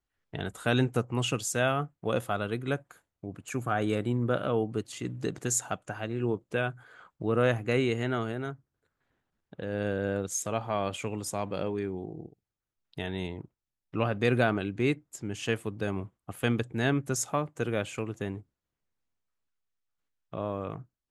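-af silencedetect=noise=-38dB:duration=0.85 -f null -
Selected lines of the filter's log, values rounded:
silence_start: 8.54
silence_end: 9.53 | silence_duration: 1.00
silence_start: 18.38
silence_end: 20.34 | silence_duration: 1.95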